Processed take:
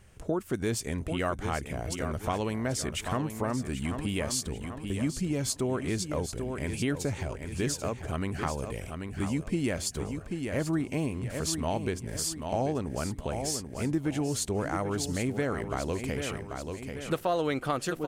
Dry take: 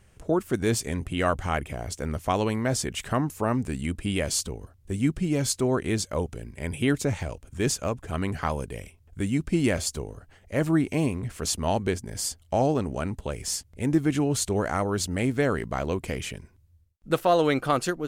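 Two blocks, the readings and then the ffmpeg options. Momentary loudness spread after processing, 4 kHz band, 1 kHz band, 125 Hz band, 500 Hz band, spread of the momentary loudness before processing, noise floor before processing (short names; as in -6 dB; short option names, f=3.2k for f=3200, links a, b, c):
5 LU, -3.5 dB, -5.0 dB, -4.0 dB, -5.0 dB, 9 LU, -58 dBFS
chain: -af "aecho=1:1:787|1574|2361|3148:0.316|0.117|0.0433|0.016,acompressor=threshold=-32dB:ratio=2,volume=1dB"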